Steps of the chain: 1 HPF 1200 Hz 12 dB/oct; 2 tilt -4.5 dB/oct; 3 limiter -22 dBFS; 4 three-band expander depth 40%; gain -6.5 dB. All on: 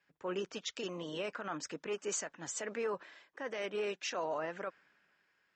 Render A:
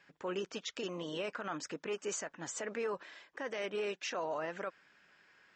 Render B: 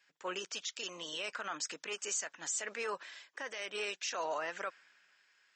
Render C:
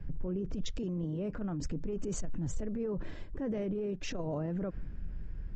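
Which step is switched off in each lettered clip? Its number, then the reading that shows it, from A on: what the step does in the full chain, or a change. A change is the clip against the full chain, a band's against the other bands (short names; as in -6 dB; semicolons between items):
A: 4, 8 kHz band -2.5 dB; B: 2, 125 Hz band -14.0 dB; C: 1, 125 Hz band +23.0 dB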